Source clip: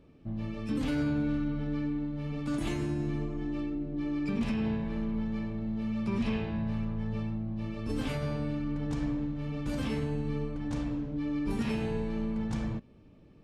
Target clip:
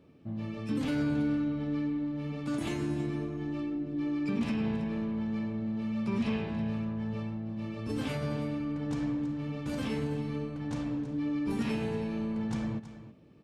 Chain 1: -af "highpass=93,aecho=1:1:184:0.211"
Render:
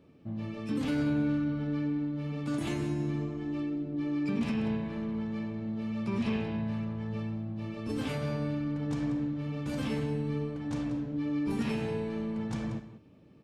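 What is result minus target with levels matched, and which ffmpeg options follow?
echo 140 ms early
-af "highpass=93,aecho=1:1:324:0.211"

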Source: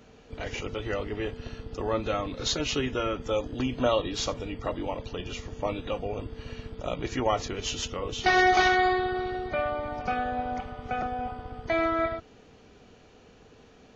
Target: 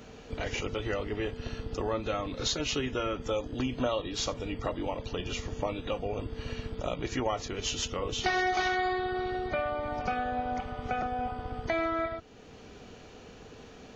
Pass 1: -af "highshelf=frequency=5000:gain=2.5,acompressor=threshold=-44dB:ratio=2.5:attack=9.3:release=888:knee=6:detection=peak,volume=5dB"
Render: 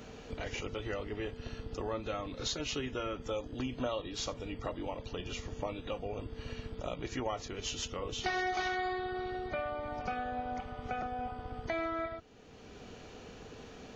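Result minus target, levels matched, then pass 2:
downward compressor: peak gain reduction +5.5 dB
-af "highshelf=frequency=5000:gain=2.5,acompressor=threshold=-35dB:ratio=2.5:attack=9.3:release=888:knee=6:detection=peak,volume=5dB"

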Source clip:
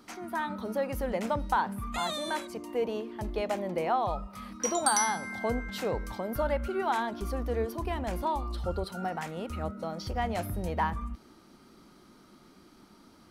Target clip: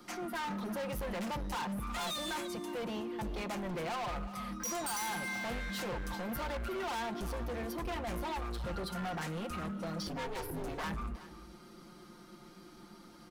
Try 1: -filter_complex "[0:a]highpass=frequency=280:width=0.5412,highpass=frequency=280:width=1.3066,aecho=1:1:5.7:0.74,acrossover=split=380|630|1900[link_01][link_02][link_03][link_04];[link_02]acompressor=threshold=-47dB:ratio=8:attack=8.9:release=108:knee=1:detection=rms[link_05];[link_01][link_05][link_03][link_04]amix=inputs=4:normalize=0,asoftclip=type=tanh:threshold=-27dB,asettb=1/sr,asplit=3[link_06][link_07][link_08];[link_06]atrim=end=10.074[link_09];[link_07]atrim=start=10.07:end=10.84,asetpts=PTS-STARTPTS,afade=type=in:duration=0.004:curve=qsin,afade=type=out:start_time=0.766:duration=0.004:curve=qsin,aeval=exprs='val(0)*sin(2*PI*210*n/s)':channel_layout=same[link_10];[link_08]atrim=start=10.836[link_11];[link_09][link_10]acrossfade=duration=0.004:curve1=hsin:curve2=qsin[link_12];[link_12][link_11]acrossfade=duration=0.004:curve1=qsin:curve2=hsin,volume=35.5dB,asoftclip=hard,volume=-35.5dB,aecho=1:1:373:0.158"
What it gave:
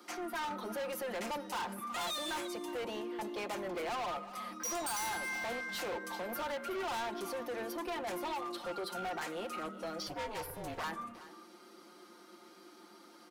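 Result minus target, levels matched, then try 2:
soft clipping: distortion +10 dB; 250 Hz band −3.5 dB
-filter_complex "[0:a]aecho=1:1:5.7:0.74,acrossover=split=380|630|1900[link_01][link_02][link_03][link_04];[link_02]acompressor=threshold=-47dB:ratio=8:attack=8.9:release=108:knee=1:detection=rms[link_05];[link_01][link_05][link_03][link_04]amix=inputs=4:normalize=0,asoftclip=type=tanh:threshold=-18.5dB,asettb=1/sr,asplit=3[link_06][link_07][link_08];[link_06]atrim=end=10.074[link_09];[link_07]atrim=start=10.07:end=10.84,asetpts=PTS-STARTPTS,afade=type=in:duration=0.004:curve=qsin,afade=type=out:start_time=0.766:duration=0.004:curve=qsin,aeval=exprs='val(0)*sin(2*PI*210*n/s)':channel_layout=same[link_10];[link_08]atrim=start=10.836[link_11];[link_09][link_10]acrossfade=duration=0.004:curve1=hsin:curve2=qsin[link_12];[link_12][link_11]acrossfade=duration=0.004:curve1=qsin:curve2=hsin,volume=35.5dB,asoftclip=hard,volume=-35.5dB,aecho=1:1:373:0.158"

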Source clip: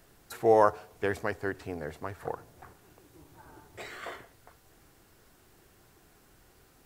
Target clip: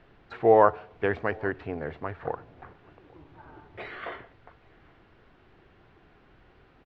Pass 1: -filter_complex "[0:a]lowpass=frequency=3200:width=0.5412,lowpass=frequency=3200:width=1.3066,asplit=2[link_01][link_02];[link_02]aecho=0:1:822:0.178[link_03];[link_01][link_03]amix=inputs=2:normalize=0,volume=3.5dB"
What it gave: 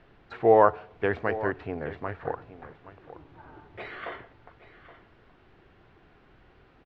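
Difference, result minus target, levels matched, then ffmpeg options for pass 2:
echo-to-direct +12 dB
-filter_complex "[0:a]lowpass=frequency=3200:width=0.5412,lowpass=frequency=3200:width=1.3066,asplit=2[link_01][link_02];[link_02]aecho=0:1:822:0.0447[link_03];[link_01][link_03]amix=inputs=2:normalize=0,volume=3.5dB"

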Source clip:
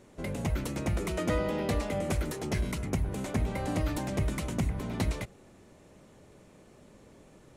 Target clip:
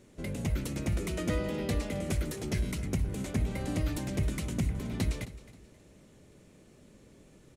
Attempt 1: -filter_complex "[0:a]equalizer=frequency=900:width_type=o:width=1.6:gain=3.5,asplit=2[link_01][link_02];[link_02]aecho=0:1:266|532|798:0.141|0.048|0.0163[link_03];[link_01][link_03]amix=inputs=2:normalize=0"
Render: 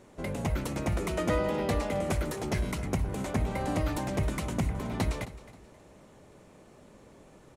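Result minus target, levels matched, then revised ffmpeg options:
1,000 Hz band +8.5 dB
-filter_complex "[0:a]equalizer=frequency=900:width_type=o:width=1.6:gain=-8,asplit=2[link_01][link_02];[link_02]aecho=0:1:266|532|798:0.141|0.048|0.0163[link_03];[link_01][link_03]amix=inputs=2:normalize=0"

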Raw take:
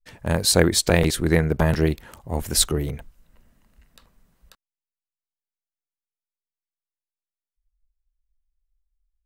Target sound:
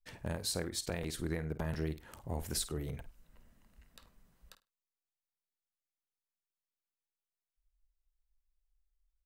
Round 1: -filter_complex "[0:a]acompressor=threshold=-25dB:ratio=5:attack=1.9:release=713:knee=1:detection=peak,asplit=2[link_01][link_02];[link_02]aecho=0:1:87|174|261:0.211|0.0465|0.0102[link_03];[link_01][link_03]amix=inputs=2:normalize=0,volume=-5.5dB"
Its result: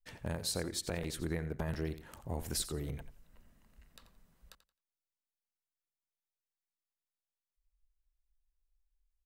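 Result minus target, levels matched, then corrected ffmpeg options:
echo 36 ms late
-filter_complex "[0:a]acompressor=threshold=-25dB:ratio=5:attack=1.9:release=713:knee=1:detection=peak,asplit=2[link_01][link_02];[link_02]aecho=0:1:51|102|153:0.211|0.0465|0.0102[link_03];[link_01][link_03]amix=inputs=2:normalize=0,volume=-5.5dB"

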